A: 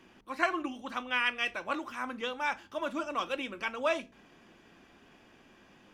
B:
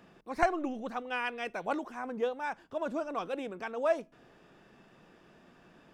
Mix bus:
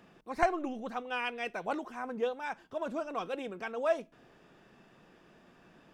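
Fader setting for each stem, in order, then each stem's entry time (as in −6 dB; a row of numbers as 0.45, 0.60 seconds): −14.5, −1.0 decibels; 0.00, 0.00 seconds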